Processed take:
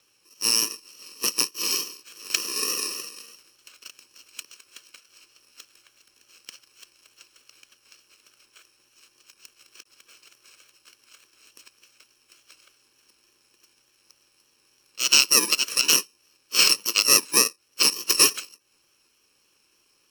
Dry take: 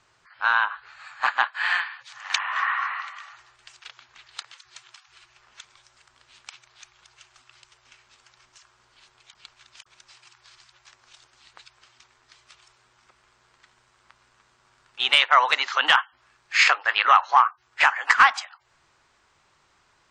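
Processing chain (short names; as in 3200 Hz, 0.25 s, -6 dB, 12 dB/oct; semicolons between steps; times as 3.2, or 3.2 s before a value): FFT order left unsorted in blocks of 64 samples; vibrato 3.4 Hz 28 cents; three-band isolator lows -17 dB, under 280 Hz, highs -14 dB, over 7600 Hz; gain +4.5 dB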